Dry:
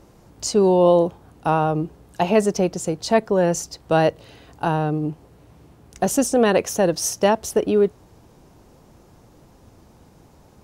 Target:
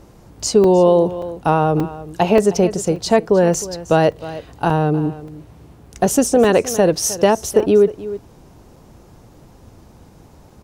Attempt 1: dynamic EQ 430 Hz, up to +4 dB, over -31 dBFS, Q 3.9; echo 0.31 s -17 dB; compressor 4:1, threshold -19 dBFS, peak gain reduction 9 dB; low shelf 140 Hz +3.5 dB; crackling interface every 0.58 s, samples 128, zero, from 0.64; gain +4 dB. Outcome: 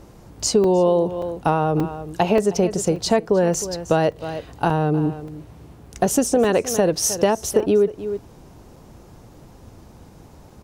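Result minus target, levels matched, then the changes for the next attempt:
compressor: peak gain reduction +5 dB
change: compressor 4:1, threshold -12.5 dBFS, peak gain reduction 4 dB

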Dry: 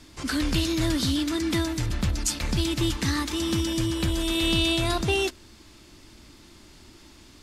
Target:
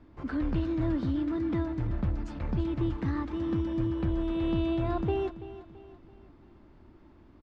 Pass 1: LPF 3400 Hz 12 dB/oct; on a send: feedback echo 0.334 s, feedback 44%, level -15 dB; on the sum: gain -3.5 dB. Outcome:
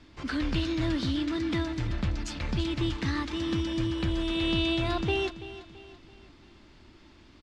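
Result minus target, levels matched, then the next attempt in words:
4000 Hz band +15.5 dB
LPF 1100 Hz 12 dB/oct; on a send: feedback echo 0.334 s, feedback 44%, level -15 dB; on the sum: gain -3.5 dB

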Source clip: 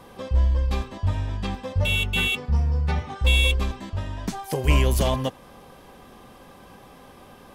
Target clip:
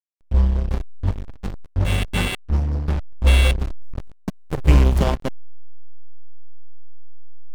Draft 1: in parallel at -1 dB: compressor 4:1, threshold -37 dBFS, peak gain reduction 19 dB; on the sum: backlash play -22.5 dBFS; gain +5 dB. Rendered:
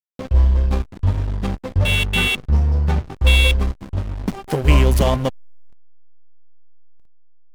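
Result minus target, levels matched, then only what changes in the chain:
backlash: distortion -10 dB
change: backlash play -13.5 dBFS

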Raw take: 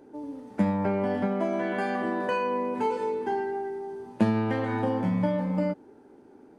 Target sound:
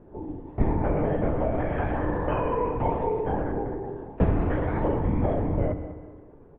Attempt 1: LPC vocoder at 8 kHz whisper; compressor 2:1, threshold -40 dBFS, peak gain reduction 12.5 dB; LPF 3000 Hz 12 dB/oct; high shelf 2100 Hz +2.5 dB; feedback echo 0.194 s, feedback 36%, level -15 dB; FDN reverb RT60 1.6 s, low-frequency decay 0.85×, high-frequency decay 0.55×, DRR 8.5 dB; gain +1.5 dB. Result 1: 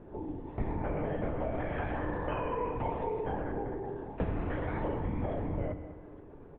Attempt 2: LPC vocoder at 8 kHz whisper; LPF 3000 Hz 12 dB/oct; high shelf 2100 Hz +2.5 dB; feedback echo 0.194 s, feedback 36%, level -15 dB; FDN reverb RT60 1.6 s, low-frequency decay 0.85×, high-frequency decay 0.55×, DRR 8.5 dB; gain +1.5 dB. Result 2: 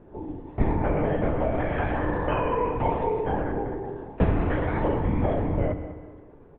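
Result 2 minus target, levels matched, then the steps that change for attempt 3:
4000 Hz band +6.5 dB
change: high shelf 2100 Hz -7.5 dB

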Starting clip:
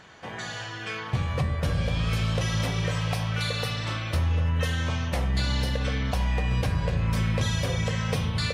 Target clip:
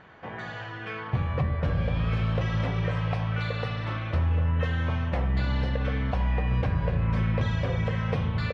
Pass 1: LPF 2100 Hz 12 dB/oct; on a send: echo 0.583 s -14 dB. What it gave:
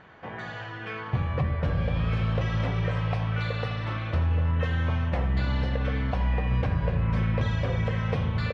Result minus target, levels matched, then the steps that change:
echo-to-direct +9.5 dB
change: echo 0.583 s -23.5 dB

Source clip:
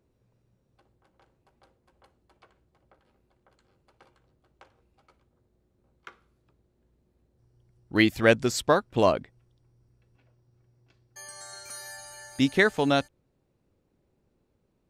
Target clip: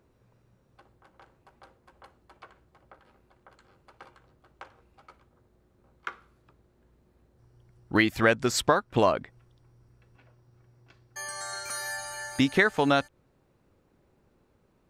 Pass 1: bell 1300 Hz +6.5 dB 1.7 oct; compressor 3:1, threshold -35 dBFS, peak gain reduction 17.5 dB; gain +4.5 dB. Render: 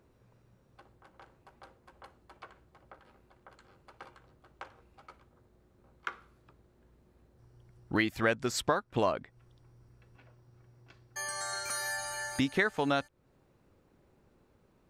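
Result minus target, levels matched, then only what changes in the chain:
compressor: peak gain reduction +6.5 dB
change: compressor 3:1, threshold -25.5 dBFS, peak gain reduction 11.5 dB

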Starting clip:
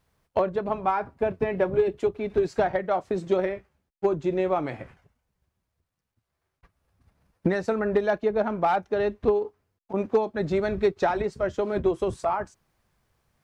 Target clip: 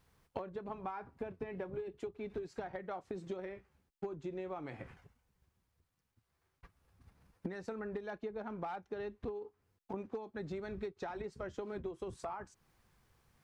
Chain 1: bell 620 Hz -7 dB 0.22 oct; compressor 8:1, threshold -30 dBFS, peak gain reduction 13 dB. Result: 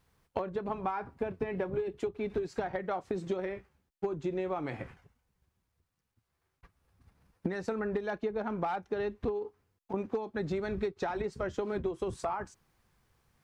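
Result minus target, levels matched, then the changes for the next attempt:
compressor: peak gain reduction -8.5 dB
change: compressor 8:1, threshold -39.5 dBFS, peak gain reduction 21.5 dB

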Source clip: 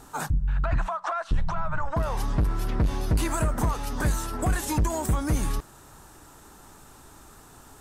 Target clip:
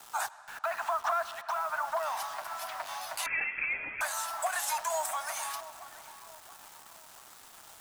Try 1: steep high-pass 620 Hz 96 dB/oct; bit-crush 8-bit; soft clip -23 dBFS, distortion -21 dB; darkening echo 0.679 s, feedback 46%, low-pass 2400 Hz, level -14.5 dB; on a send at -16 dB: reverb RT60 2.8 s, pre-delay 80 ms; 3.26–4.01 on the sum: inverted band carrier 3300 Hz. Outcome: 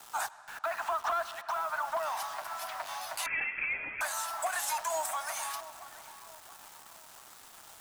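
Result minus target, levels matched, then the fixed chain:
soft clip: distortion +16 dB
steep high-pass 620 Hz 96 dB/oct; bit-crush 8-bit; soft clip -14 dBFS, distortion -36 dB; darkening echo 0.679 s, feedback 46%, low-pass 2400 Hz, level -14.5 dB; on a send at -16 dB: reverb RT60 2.8 s, pre-delay 80 ms; 3.26–4.01 on the sum: inverted band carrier 3300 Hz

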